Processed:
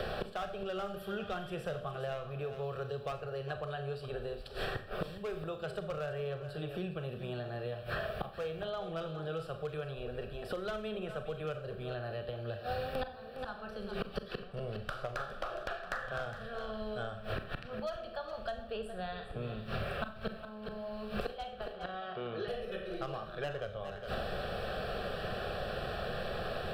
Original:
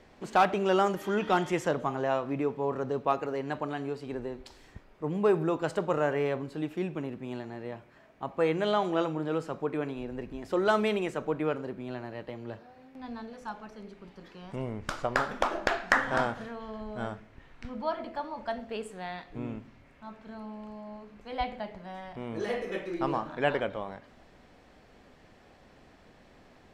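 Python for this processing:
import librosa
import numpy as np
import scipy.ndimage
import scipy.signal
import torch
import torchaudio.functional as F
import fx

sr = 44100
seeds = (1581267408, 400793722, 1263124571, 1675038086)

p1 = fx.cabinet(x, sr, low_hz=260.0, low_slope=12, high_hz=4500.0, hz=(360.0, 620.0, 1300.0), db=(4, -4, 5), at=(21.55, 22.48))
p2 = fx.rider(p1, sr, range_db=5, speed_s=0.5)
p3 = p1 + (p2 * librosa.db_to_amplitude(1.0))
p4 = fx.fixed_phaser(p3, sr, hz=1400.0, stages=8)
p5 = np.clip(10.0 ** (17.0 / 20.0) * p4, -1.0, 1.0) / 10.0 ** (17.0 / 20.0)
p6 = fx.gate_flip(p5, sr, shuts_db=-34.0, range_db=-29)
p7 = p6 + 10.0 ** (-15.5 / 20.0) * np.pad(p6, (int(411 * sr / 1000.0), 0))[:len(p6)]
p8 = fx.rev_schroeder(p7, sr, rt60_s=0.38, comb_ms=29, drr_db=8.0)
p9 = fx.band_squash(p8, sr, depth_pct=100)
y = p9 * librosa.db_to_amplitude(14.5)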